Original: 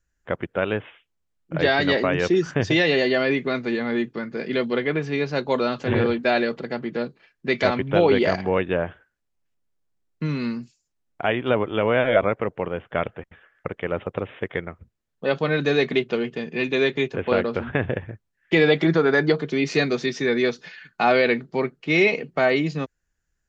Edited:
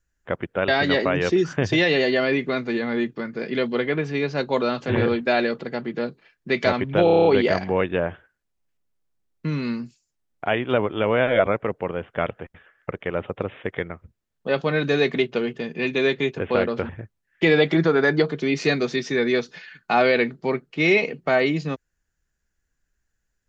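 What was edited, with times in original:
0.68–1.66 s: delete
8.02 s: stutter 0.03 s, 8 plays
17.66–17.99 s: delete

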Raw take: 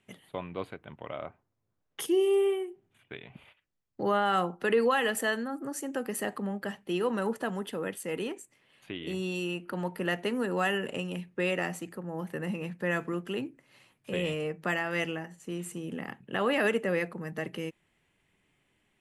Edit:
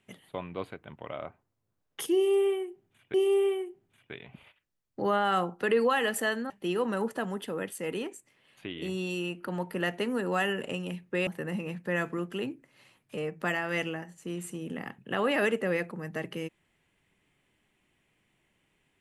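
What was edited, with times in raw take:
2.15–3.14 s: loop, 2 plays
5.51–6.75 s: delete
11.52–12.22 s: delete
14.12–14.39 s: delete

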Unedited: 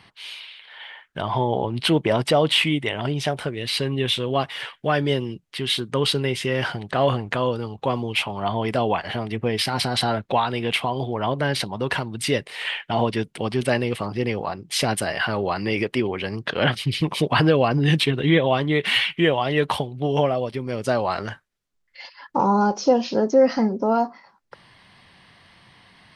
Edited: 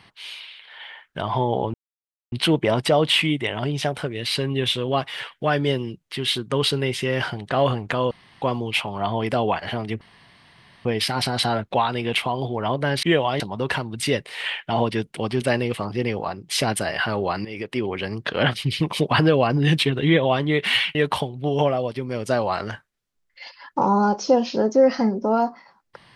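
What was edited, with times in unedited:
1.74 s: insert silence 0.58 s
7.53–7.84 s: room tone
9.43 s: insert room tone 0.84 s
15.66–16.15 s: fade in, from -15.5 dB
19.16–19.53 s: move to 11.61 s

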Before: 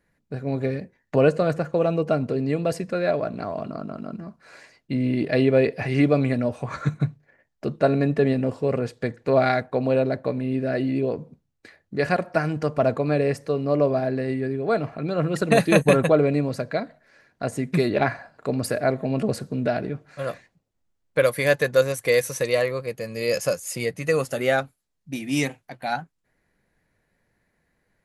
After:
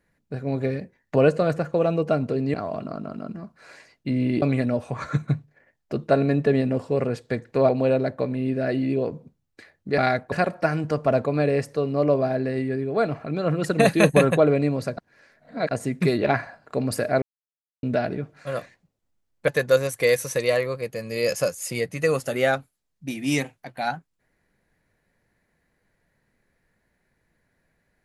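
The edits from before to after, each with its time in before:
2.54–3.38 s: delete
5.26–6.14 s: delete
9.41–9.75 s: move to 12.04 s
16.69–17.43 s: reverse
18.94–19.55 s: mute
21.20–21.53 s: delete

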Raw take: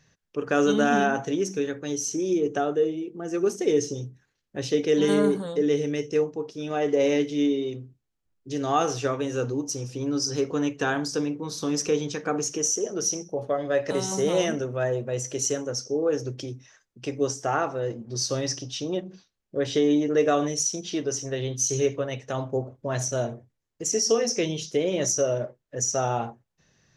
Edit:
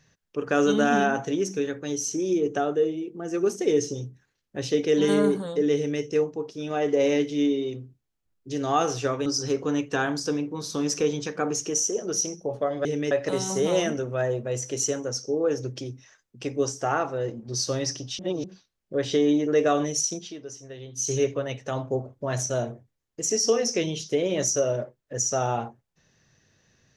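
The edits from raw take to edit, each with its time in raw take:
5.76–6.02 s: copy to 13.73 s
9.26–10.14 s: delete
18.81–19.06 s: reverse
20.77–21.73 s: dip -11.5 dB, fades 0.19 s

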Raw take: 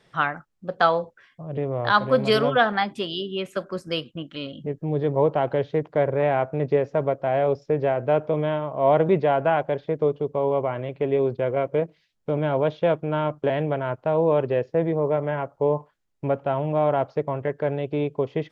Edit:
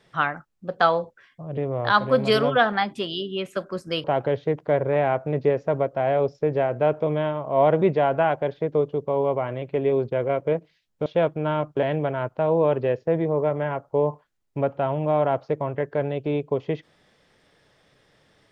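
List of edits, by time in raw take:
4.04–5.31 s: delete
12.33–12.73 s: delete

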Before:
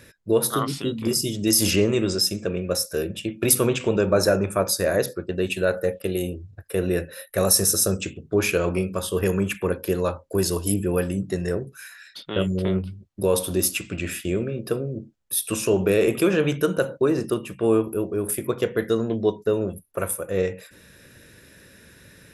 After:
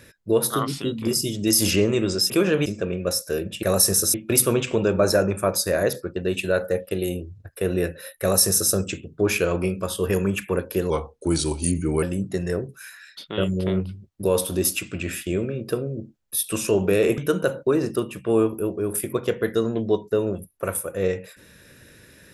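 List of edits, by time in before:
7.34–7.85 s: copy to 3.27 s
10.03–11.01 s: speed 87%
16.16–16.52 s: move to 2.30 s

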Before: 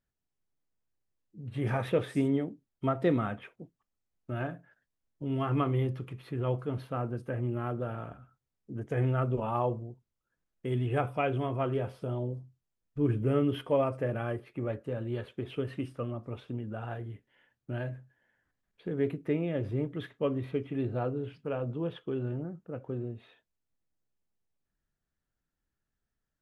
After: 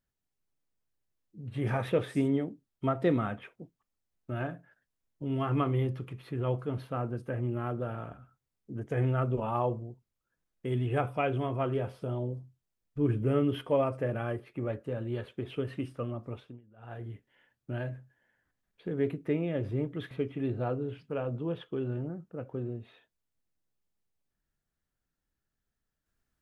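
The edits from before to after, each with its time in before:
16.30–17.07 s: dip -22 dB, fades 0.31 s
20.11–20.46 s: delete

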